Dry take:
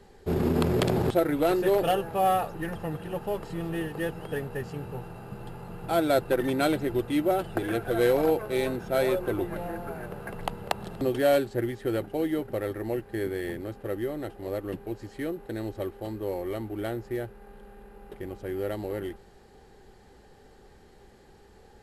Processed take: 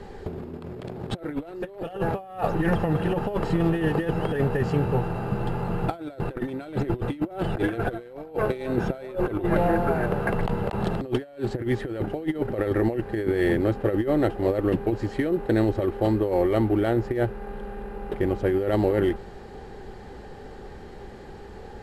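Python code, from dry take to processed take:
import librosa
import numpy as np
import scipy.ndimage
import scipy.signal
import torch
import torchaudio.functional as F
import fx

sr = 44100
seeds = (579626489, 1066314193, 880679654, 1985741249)

y = fx.lowpass(x, sr, hz=2500.0, slope=6)
y = fx.over_compress(y, sr, threshold_db=-33.0, ratio=-0.5)
y = y * 10.0 ** (8.5 / 20.0)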